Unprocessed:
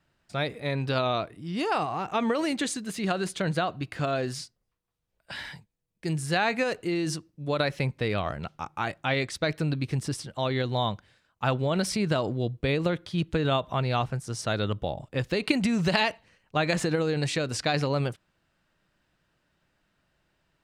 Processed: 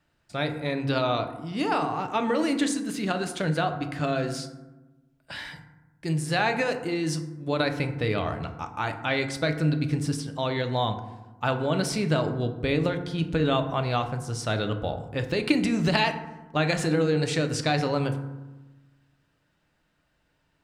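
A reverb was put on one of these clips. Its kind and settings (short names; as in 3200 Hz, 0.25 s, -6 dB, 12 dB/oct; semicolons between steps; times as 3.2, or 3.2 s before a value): FDN reverb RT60 1.1 s, low-frequency decay 1.4×, high-frequency decay 0.4×, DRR 6 dB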